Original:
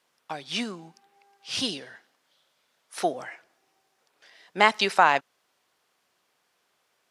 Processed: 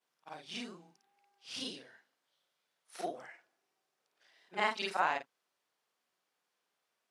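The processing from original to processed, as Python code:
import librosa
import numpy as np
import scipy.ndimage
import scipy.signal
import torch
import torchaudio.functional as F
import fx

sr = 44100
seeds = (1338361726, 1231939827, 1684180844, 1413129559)

y = fx.frame_reverse(x, sr, frame_ms=107.0)
y = scipy.signal.sosfilt(scipy.signal.butter(2, 140.0, 'highpass', fs=sr, output='sos'), y)
y = y * librosa.db_to_amplitude(-9.0)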